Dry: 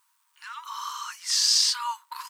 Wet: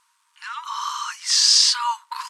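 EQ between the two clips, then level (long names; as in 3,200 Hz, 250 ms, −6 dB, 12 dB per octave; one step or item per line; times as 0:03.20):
Bessel low-pass filter 8,300 Hz, order 4
+7.0 dB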